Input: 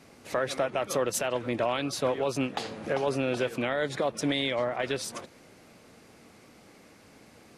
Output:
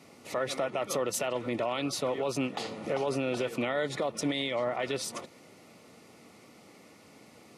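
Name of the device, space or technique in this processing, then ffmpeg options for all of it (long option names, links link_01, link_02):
PA system with an anti-feedback notch: -af "highpass=110,asuperstop=centerf=1600:order=8:qfactor=7.7,alimiter=limit=-21dB:level=0:latency=1:release=38"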